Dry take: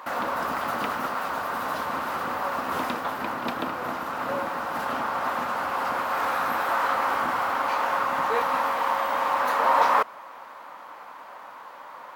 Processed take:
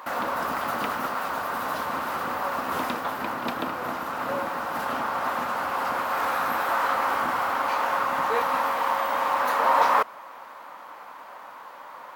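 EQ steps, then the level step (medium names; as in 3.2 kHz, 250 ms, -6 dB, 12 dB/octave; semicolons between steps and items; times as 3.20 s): treble shelf 9.7 kHz +4 dB; 0.0 dB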